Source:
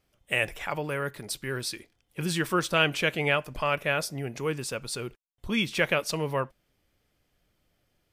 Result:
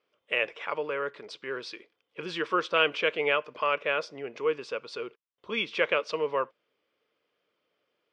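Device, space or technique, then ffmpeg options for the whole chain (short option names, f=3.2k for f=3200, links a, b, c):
phone earpiece: -af "highpass=420,equalizer=f=460:t=q:w=4:g=7,equalizer=f=760:t=q:w=4:g=-7,equalizer=f=1.1k:t=q:w=4:g=4,equalizer=f=1.8k:t=q:w=4:g=-4,equalizer=f=4.1k:t=q:w=4:g=-5,lowpass=f=4.3k:w=0.5412,lowpass=f=4.3k:w=1.3066"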